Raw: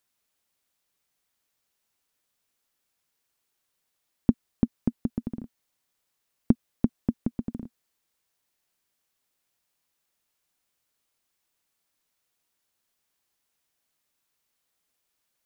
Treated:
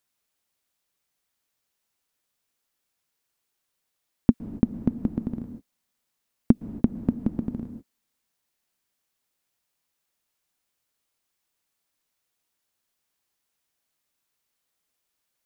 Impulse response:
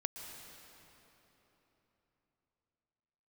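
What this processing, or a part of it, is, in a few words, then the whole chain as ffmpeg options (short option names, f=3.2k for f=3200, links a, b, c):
keyed gated reverb: -filter_complex "[0:a]asplit=3[a][b][c];[1:a]atrim=start_sample=2205[d];[b][d]afir=irnorm=-1:irlink=0[e];[c]apad=whole_len=681765[f];[e][f]sidechaingate=range=-52dB:threshold=-55dB:ratio=16:detection=peak,volume=-3dB[g];[a][g]amix=inputs=2:normalize=0,volume=-1dB"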